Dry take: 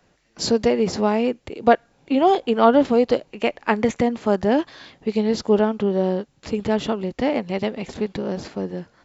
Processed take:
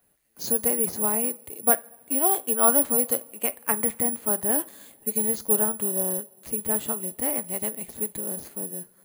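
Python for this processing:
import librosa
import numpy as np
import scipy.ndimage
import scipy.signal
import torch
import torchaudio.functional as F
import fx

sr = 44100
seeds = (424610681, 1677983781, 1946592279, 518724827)

y = fx.rev_double_slope(x, sr, seeds[0], early_s=0.3, late_s=3.0, knee_db=-20, drr_db=13.5)
y = (np.kron(scipy.signal.resample_poly(y, 1, 4), np.eye(4)[0]) * 4)[:len(y)]
y = fx.dynamic_eq(y, sr, hz=1300.0, q=0.91, threshold_db=-30.0, ratio=4.0, max_db=5)
y = y * 10.0 ** (-12.0 / 20.0)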